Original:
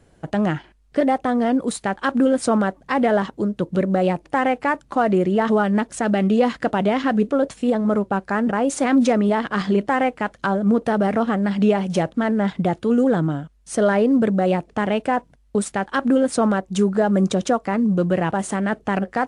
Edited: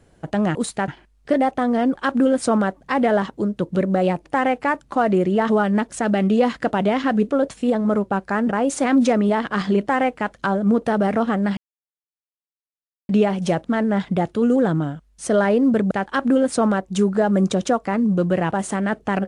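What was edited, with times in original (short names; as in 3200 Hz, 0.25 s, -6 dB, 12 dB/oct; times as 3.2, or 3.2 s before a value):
1.62–1.95 move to 0.55
11.57 insert silence 1.52 s
14.39–15.71 cut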